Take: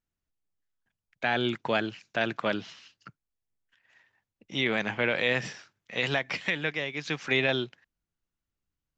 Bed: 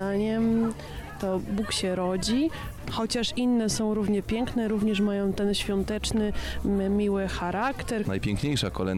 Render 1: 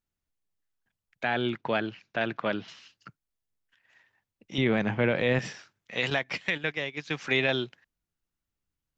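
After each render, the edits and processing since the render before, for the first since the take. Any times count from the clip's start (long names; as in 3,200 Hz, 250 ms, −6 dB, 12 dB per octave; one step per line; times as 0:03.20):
0:01.24–0:02.68: high-frequency loss of the air 160 metres
0:04.58–0:05.39: spectral tilt −3 dB per octave
0:06.10–0:07.14: noise gate −35 dBFS, range −8 dB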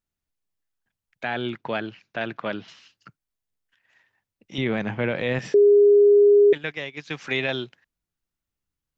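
0:05.54–0:06.53: beep over 409 Hz −11 dBFS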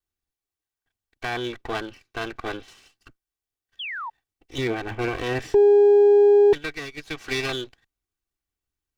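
lower of the sound and its delayed copy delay 2.6 ms
0:03.79–0:04.10: sound drawn into the spectrogram fall 850–3,500 Hz −32 dBFS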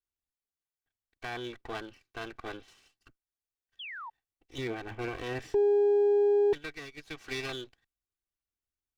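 level −9.5 dB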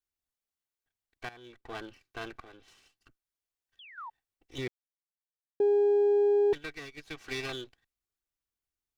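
0:01.29–0:01.84: fade in quadratic, from −15 dB
0:02.42–0:03.98: downward compressor 2.5 to 1, threshold −55 dBFS
0:04.68–0:05.60: silence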